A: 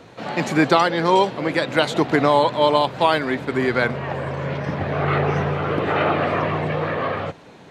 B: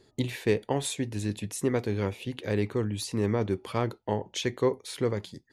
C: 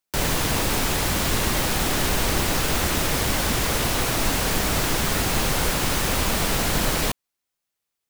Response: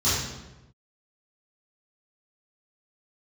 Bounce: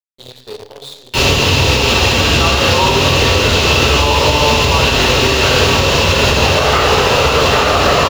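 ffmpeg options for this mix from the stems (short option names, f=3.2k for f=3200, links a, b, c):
-filter_complex "[0:a]alimiter=limit=-13dB:level=0:latency=1,equalizer=f=1.5k:w=0.43:g=13.5,adelay=1650,volume=-0.5dB,asplit=2[a][b];[b]volume=-19.5dB[c];[1:a]equalizer=f=125:t=o:w=1:g=-9,equalizer=f=250:t=o:w=1:g=-10,equalizer=f=500:t=o:w=1:g=-6,equalizer=f=1k:t=o:w=1:g=-8,equalizer=f=2k:t=o:w=1:g=-11,equalizer=f=4k:t=o:w=1:g=6,equalizer=f=8k:t=o:w=1:g=-6,volume=-7.5dB,asplit=3[d][e][f];[e]volume=-15.5dB[g];[2:a]equalizer=f=2.7k:t=o:w=0.39:g=14.5,adelay=1000,volume=-4dB,asplit=2[h][i];[i]volume=-4.5dB[j];[f]apad=whole_len=412715[k];[a][k]sidechaincompress=threshold=-57dB:ratio=8:attack=16:release=1090[l];[3:a]atrim=start_sample=2205[m];[c][g][j]amix=inputs=3:normalize=0[n];[n][m]afir=irnorm=-1:irlink=0[o];[l][d][h][o]amix=inputs=4:normalize=0,acrusher=bits=7:dc=4:mix=0:aa=0.000001,equalizer=f=500:t=o:w=1:g=12,equalizer=f=1k:t=o:w=1:g=5,equalizer=f=4k:t=o:w=1:g=10,alimiter=limit=-1.5dB:level=0:latency=1:release=378"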